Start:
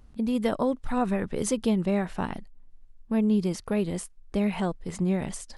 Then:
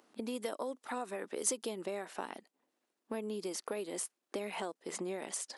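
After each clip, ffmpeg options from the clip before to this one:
ffmpeg -i in.wav -filter_complex "[0:a]highpass=frequency=310:width=0.5412,highpass=frequency=310:width=1.3066,acrossover=split=5300[link_01][link_02];[link_01]acompressor=threshold=-37dB:ratio=6[link_03];[link_03][link_02]amix=inputs=2:normalize=0,volume=1dB" out.wav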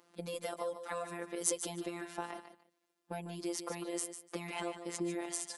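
ffmpeg -i in.wav -af "afftfilt=real='hypot(re,im)*cos(PI*b)':imag='0':win_size=1024:overlap=0.75,aecho=1:1:148|296:0.316|0.0538,volume=3.5dB" out.wav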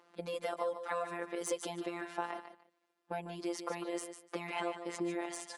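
ffmpeg -i in.wav -filter_complex "[0:a]asplit=2[link_01][link_02];[link_02]highpass=frequency=720:poles=1,volume=11dB,asoftclip=type=tanh:threshold=-10dB[link_03];[link_01][link_03]amix=inputs=2:normalize=0,lowpass=frequency=1700:poles=1,volume=-6dB" out.wav

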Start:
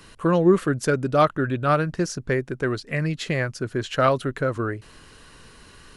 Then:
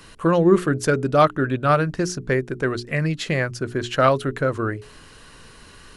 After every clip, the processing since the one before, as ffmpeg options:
ffmpeg -i in.wav -af "bandreject=frequency=60:width_type=h:width=6,bandreject=frequency=120:width_type=h:width=6,bandreject=frequency=180:width_type=h:width=6,bandreject=frequency=240:width_type=h:width=6,bandreject=frequency=300:width_type=h:width=6,bandreject=frequency=360:width_type=h:width=6,bandreject=frequency=420:width_type=h:width=6,volume=2.5dB" out.wav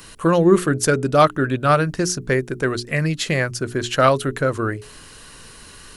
ffmpeg -i in.wav -af "crystalizer=i=1.5:c=0,volume=1.5dB" out.wav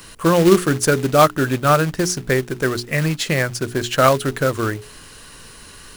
ffmpeg -i in.wav -af "acrusher=bits=3:mode=log:mix=0:aa=0.000001,volume=1dB" out.wav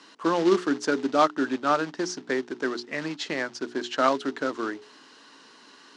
ffmpeg -i in.wav -af "highpass=frequency=240:width=0.5412,highpass=frequency=240:width=1.3066,equalizer=frequency=280:width_type=q:width=4:gain=6,equalizer=frequency=520:width_type=q:width=4:gain=-4,equalizer=frequency=900:width_type=q:width=4:gain=5,equalizer=frequency=2400:width_type=q:width=4:gain=-4,lowpass=frequency=5900:width=0.5412,lowpass=frequency=5900:width=1.3066,volume=-8dB" out.wav

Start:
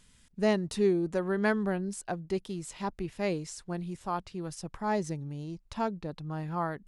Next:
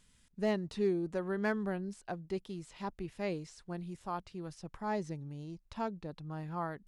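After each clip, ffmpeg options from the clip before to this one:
ffmpeg -i in.wav -filter_complex "[0:a]acrossover=split=5100[link_01][link_02];[link_02]acompressor=threshold=-54dB:ratio=4:attack=1:release=60[link_03];[link_01][link_03]amix=inputs=2:normalize=0,asoftclip=type=hard:threshold=-16.5dB,volume=-5.5dB" out.wav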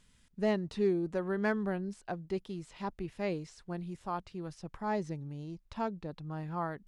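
ffmpeg -i in.wav -af "highshelf=frequency=6000:gain=-5.5,volume=2dB" out.wav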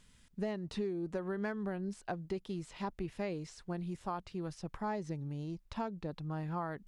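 ffmpeg -i in.wav -af "acompressor=threshold=-35dB:ratio=12,volume=2dB" out.wav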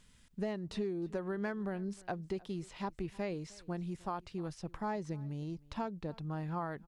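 ffmpeg -i in.wav -af "aecho=1:1:309:0.0708" out.wav

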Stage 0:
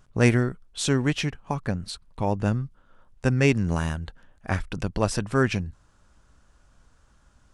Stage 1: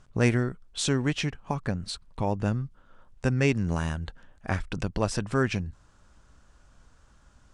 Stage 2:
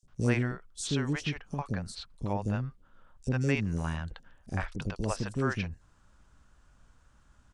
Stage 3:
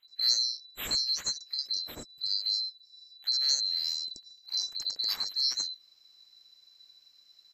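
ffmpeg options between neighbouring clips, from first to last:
ffmpeg -i in.wav -filter_complex "[0:a]lowpass=frequency=9700:width=0.5412,lowpass=frequency=9700:width=1.3066,asplit=2[link_01][link_02];[link_02]acompressor=threshold=-30dB:ratio=6,volume=1.5dB[link_03];[link_01][link_03]amix=inputs=2:normalize=0,volume=-5.5dB" out.wav
ffmpeg -i in.wav -filter_complex "[0:a]acrossover=split=500|5100[link_01][link_02][link_03];[link_01]adelay=30[link_04];[link_02]adelay=80[link_05];[link_04][link_05][link_03]amix=inputs=3:normalize=0,volume=-3.5dB" out.wav
ffmpeg -i in.wav -af "afftfilt=real='real(if(lt(b,736),b+184*(1-2*mod(floor(b/184),2)),b),0)':imag='imag(if(lt(b,736),b+184*(1-2*mod(floor(b/184),2)),b),0)':win_size=2048:overlap=0.75" out.wav

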